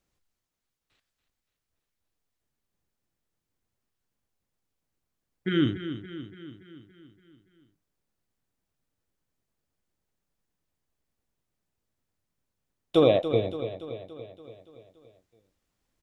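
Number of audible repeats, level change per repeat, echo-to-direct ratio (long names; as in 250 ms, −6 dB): 6, −4.5 dB, −9.0 dB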